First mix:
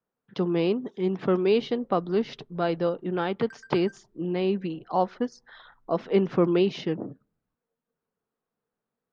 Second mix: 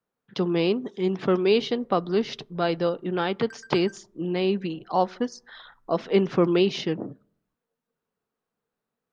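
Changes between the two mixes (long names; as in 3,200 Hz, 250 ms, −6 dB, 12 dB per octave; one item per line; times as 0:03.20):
speech: send +9.5 dB
master: add high-shelf EQ 3,100 Hz +9.5 dB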